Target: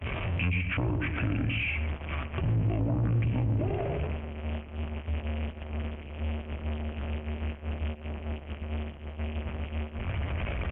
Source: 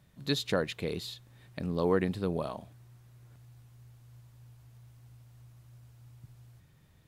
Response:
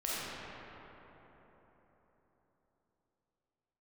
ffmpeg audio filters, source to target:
-filter_complex "[0:a]aeval=exprs='val(0)+0.5*0.0141*sgn(val(0))':channel_layout=same,equalizer=frequency=100:width_type=o:width=0.67:gain=3,equalizer=frequency=1000:width_type=o:width=0.67:gain=7,equalizer=frequency=4000:width_type=o:width=0.67:gain=8,atempo=0.66,asplit=2[link_01][link_02];[link_02]adelay=105,lowpass=frequency=980:poles=1,volume=-4dB,asplit=2[link_03][link_04];[link_04]adelay=105,lowpass=frequency=980:poles=1,volume=0.32,asplit=2[link_05][link_06];[link_06]adelay=105,lowpass=frequency=980:poles=1,volume=0.32,asplit=2[link_07][link_08];[link_08]adelay=105,lowpass=frequency=980:poles=1,volume=0.32[link_09];[link_01][link_03][link_05][link_07][link_09]amix=inputs=5:normalize=0,acrossover=split=200[link_10][link_11];[link_11]acompressor=threshold=-33dB:ratio=8[link_12];[link_10][link_12]amix=inputs=2:normalize=0,equalizer=frequency=200:width_type=o:width=0.99:gain=4.5,bandreject=frequency=50:width_type=h:width=6,bandreject=frequency=100:width_type=h:width=6,bandreject=frequency=150:width_type=h:width=6,bandreject=frequency=200:width_type=h:width=6,bandreject=frequency=250:width_type=h:width=6,asplit=2[link_13][link_14];[link_14]acompressor=threshold=-38dB:ratio=6,volume=3dB[link_15];[link_13][link_15]amix=inputs=2:normalize=0,agate=range=-28dB:threshold=-34dB:ratio=16:detection=peak,aresample=11025,asoftclip=type=tanh:threshold=-25dB,aresample=44100,asetrate=27781,aresample=44100,atempo=1.5874,volume=3dB" -ar 48000 -c:a libopus -b:a 48k

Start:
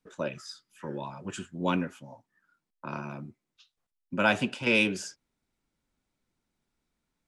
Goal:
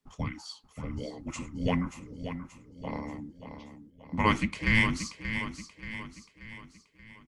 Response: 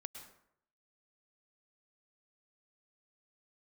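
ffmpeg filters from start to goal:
-af "aecho=1:1:581|1162|1743|2324|2905:0.335|0.161|0.0772|0.037|0.0178,afreqshift=-440"

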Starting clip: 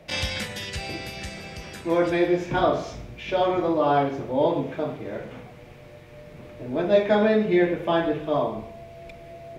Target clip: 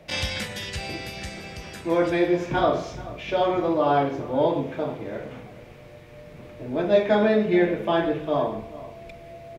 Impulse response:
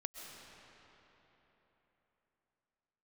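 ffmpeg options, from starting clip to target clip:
-filter_complex "[0:a]asplit=2[link_01][link_02];[link_02]adelay=431.5,volume=-17dB,highshelf=frequency=4000:gain=-9.71[link_03];[link_01][link_03]amix=inputs=2:normalize=0"

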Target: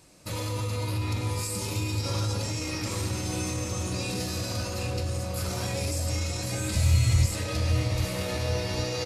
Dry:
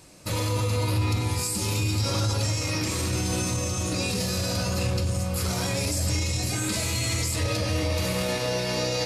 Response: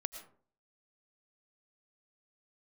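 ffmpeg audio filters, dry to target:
-filter_complex "[0:a]asplit=3[link_01][link_02][link_03];[link_01]afade=type=out:start_time=6.73:duration=0.02[link_04];[link_02]asubboost=boost=10:cutoff=110,afade=type=in:start_time=6.73:duration=0.02,afade=type=out:start_time=7.25:duration=0.02[link_05];[link_03]afade=type=in:start_time=7.25:duration=0.02[link_06];[link_04][link_05][link_06]amix=inputs=3:normalize=0,asplit=2[link_07][link_08];[link_08]adelay=790,lowpass=frequency=2300:poles=1,volume=-5.5dB,asplit=2[link_09][link_10];[link_10]adelay=790,lowpass=frequency=2300:poles=1,volume=0.55,asplit=2[link_11][link_12];[link_12]adelay=790,lowpass=frequency=2300:poles=1,volume=0.55,asplit=2[link_13][link_14];[link_14]adelay=790,lowpass=frequency=2300:poles=1,volume=0.55,asplit=2[link_15][link_16];[link_16]adelay=790,lowpass=frequency=2300:poles=1,volume=0.55,asplit=2[link_17][link_18];[link_18]adelay=790,lowpass=frequency=2300:poles=1,volume=0.55,asplit=2[link_19][link_20];[link_20]adelay=790,lowpass=frequency=2300:poles=1,volume=0.55[link_21];[link_07][link_09][link_11][link_13][link_15][link_17][link_19][link_21]amix=inputs=8:normalize=0[link_22];[1:a]atrim=start_sample=2205,afade=type=out:start_time=0.16:duration=0.01,atrim=end_sample=7497[link_23];[link_22][link_23]afir=irnorm=-1:irlink=0,volume=-4dB"

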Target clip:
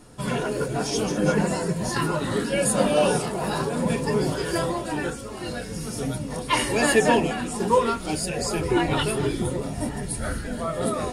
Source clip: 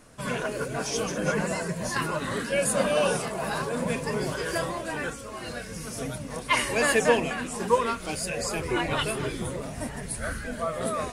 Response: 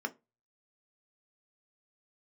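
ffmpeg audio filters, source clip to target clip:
-filter_complex "[0:a]asplit=2[link_01][link_02];[link_02]highshelf=frequency=11000:gain=6[link_03];[1:a]atrim=start_sample=2205,asetrate=48510,aresample=44100[link_04];[link_03][link_04]afir=irnorm=-1:irlink=0,volume=-5.5dB[link_05];[link_01][link_05]amix=inputs=2:normalize=0,volume=5.5dB"

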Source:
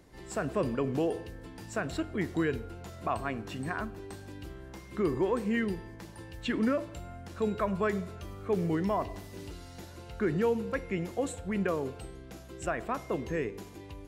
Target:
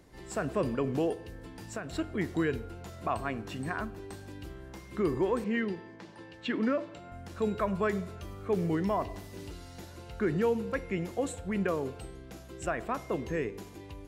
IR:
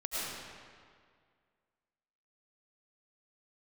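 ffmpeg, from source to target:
-filter_complex "[0:a]asplit=3[link_01][link_02][link_03];[link_01]afade=type=out:start_time=1.13:duration=0.02[link_04];[link_02]acompressor=threshold=-36dB:ratio=3,afade=type=in:start_time=1.13:duration=0.02,afade=type=out:start_time=1.93:duration=0.02[link_05];[link_03]afade=type=in:start_time=1.93:duration=0.02[link_06];[link_04][link_05][link_06]amix=inputs=3:normalize=0,asettb=1/sr,asplit=3[link_07][link_08][link_09];[link_07]atrim=end=5.444[link_10];[link_08]atrim=start=5.44:end=7.12,asetpts=PTS-STARTPTS,afade=type=in:duration=0.004:curve=qsin,afade=type=out:start_time=1.676:duration=0.004:curve=qsin,highpass=180,lowpass=4800[link_11];[link_09]atrim=start=7.116[link_12];[link_10][link_11]acrossfade=duration=0.004:curve1=hsin:curve2=qsin[link_13];[link_13][link_12]acrossfade=duration=0.004:curve1=qsin:curve2=hsin"

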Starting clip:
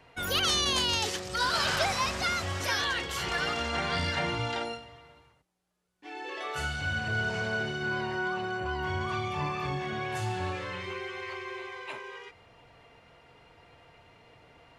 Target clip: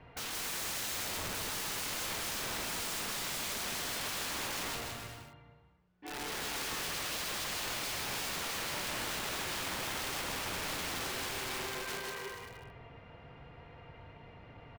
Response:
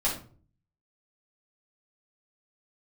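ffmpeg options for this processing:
-filter_complex "[0:a]lowpass=7200,bass=frequency=250:gain=7,treble=frequency=4000:gain=-15,acompressor=threshold=-31dB:ratio=3,aeval=exprs='(mod(56.2*val(0)+1,2)-1)/56.2':channel_layout=same,asplit=2[link_01][link_02];[link_02]aecho=0:1:160|288|390.4|472.3|537.9:0.631|0.398|0.251|0.158|0.1[link_03];[link_01][link_03]amix=inputs=2:normalize=0"

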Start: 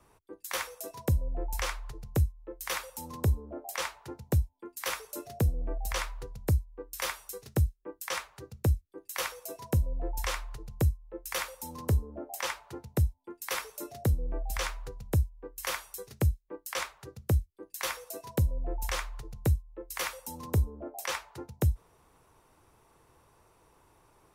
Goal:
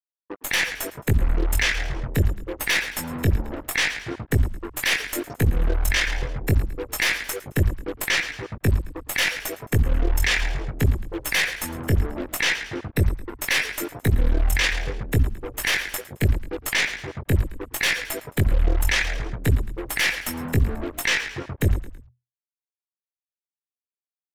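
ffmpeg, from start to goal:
ffmpeg -i in.wav -filter_complex "[0:a]afftfilt=real='re*gte(hypot(re,im),0.0112)':imag='im*gte(hypot(re,im),0.0112)':win_size=1024:overlap=0.75,firequalizer=gain_entry='entry(130,0);entry(620,-15);entry(1100,-26);entry(1700,7)':delay=0.05:min_phase=1,flanger=delay=18:depth=3.7:speed=0.72,aeval=exprs='0.158*(cos(1*acos(clip(val(0)/0.158,-1,1)))-cos(1*PI/2))+0.0178*(cos(4*acos(clip(val(0)/0.158,-1,1)))-cos(4*PI/2))+0.0316*(cos(6*acos(clip(val(0)/0.158,-1,1)))-cos(6*PI/2))+0.00141*(cos(7*acos(clip(val(0)/0.158,-1,1)))-cos(7*PI/2))':channel_layout=same,acrusher=bits=8:mix=0:aa=0.5,asplit=2[link_01][link_02];[link_02]highpass=frequency=720:poles=1,volume=10dB,asoftclip=type=tanh:threshold=-15dB[link_03];[link_01][link_03]amix=inputs=2:normalize=0,lowpass=frequency=1300:poles=1,volume=-6dB,asplit=4[link_04][link_05][link_06][link_07];[link_05]adelay=109,afreqshift=-41,volume=-18.5dB[link_08];[link_06]adelay=218,afreqshift=-82,volume=-26.9dB[link_09];[link_07]adelay=327,afreqshift=-123,volume=-35.3dB[link_10];[link_04][link_08][link_09][link_10]amix=inputs=4:normalize=0,alimiter=level_in=31dB:limit=-1dB:release=50:level=0:latency=1,volume=-9dB" out.wav

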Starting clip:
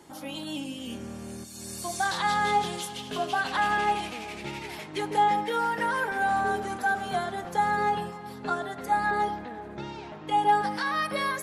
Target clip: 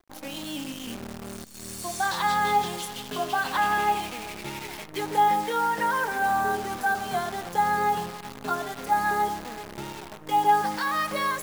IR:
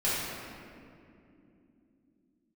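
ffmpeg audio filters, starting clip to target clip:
-af "anlmdn=0.0398,adynamicequalizer=threshold=0.0141:dfrequency=1000:dqfactor=2.7:tfrequency=1000:tqfactor=2.7:attack=5:release=100:ratio=0.375:range=2:mode=boostabove:tftype=bell,acrusher=bits=7:dc=4:mix=0:aa=0.000001"

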